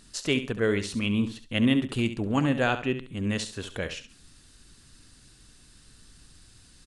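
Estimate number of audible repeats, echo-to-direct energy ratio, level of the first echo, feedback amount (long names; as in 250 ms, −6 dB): 3, −10.5 dB, −11.0 dB, 27%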